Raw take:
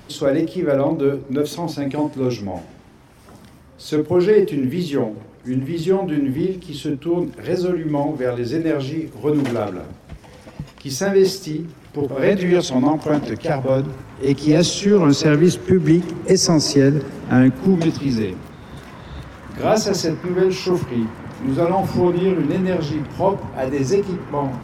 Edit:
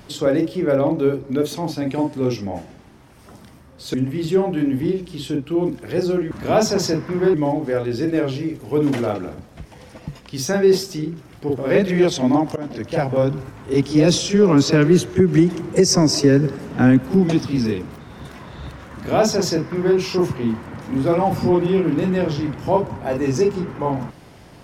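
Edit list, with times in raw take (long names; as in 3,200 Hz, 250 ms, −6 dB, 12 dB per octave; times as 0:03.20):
0:03.94–0:05.49: remove
0:13.08–0:13.46: fade in, from −18 dB
0:19.46–0:20.49: duplicate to 0:07.86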